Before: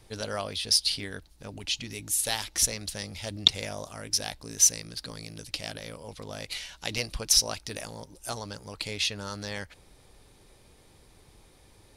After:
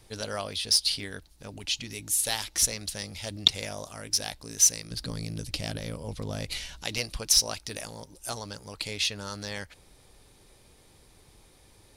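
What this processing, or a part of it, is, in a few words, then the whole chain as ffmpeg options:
exciter from parts: -filter_complex "[0:a]asplit=2[s0][s1];[s1]highpass=f=4700:p=1,asoftclip=type=tanh:threshold=0.0501,volume=0.501[s2];[s0][s2]amix=inputs=2:normalize=0,asettb=1/sr,asplit=3[s3][s4][s5];[s3]atrim=end=4.914[s6];[s4]atrim=start=4.91:end=6.83,asetpts=PTS-STARTPTS,afade=t=in:d=0.004:c=qsin,afade=t=out:st=1.916:d=0.004:c=qsin,lowshelf=f=350:g=12[s7];[s5]atrim=start=6.826[s8];[s6][s7]acrossfade=d=0.004:c1=hsin:c2=qsin[s9];[s9][s8]acrossfade=d=0.004:c1=qsin:c2=hsin,volume=0.891"

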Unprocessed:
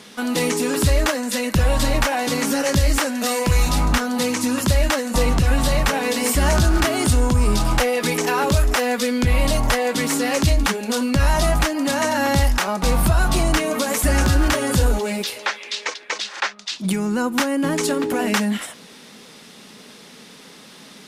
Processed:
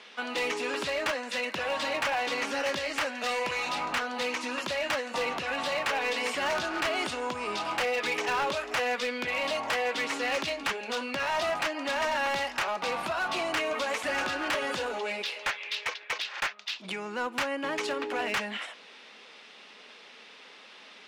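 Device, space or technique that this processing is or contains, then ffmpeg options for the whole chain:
megaphone: -af "highpass=530,lowpass=3800,equalizer=f=2600:t=o:w=0.59:g=5,asoftclip=type=hard:threshold=0.106,volume=0.562"

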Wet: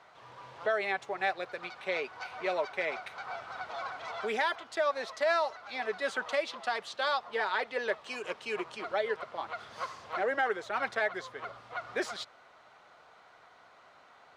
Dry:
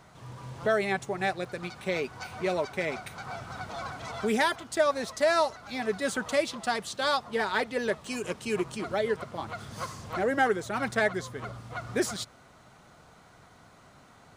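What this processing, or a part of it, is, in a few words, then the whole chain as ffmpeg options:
DJ mixer with the lows and highs turned down: -filter_complex "[0:a]acrossover=split=430 4700:gain=0.1 1 0.126[s0][s1][s2];[s0][s1][s2]amix=inputs=3:normalize=0,alimiter=limit=0.1:level=0:latency=1:release=90"

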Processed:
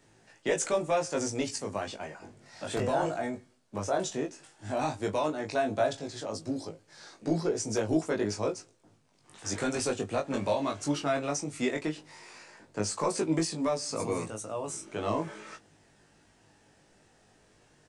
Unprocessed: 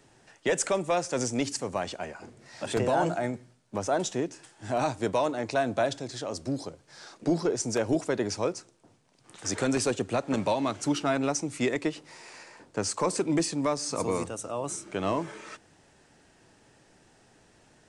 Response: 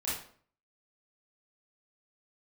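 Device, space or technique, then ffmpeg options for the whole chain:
double-tracked vocal: -filter_complex "[0:a]asplit=2[s0][s1];[s1]adelay=19,volume=0.316[s2];[s0][s2]amix=inputs=2:normalize=0,flanger=delay=18.5:depth=2.3:speed=0.14"

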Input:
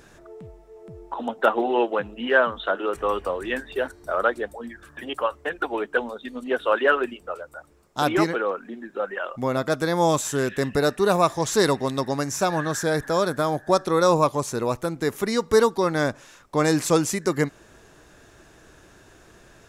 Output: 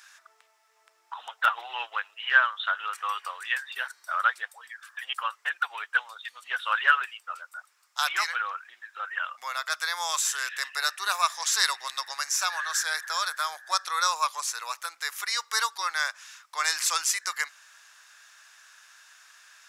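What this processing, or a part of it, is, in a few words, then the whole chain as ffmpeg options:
headphones lying on a table: -af "highpass=f=1200:w=0.5412,highpass=f=1200:w=1.3066,equalizer=f=5100:t=o:w=0.52:g=4,volume=1.26"

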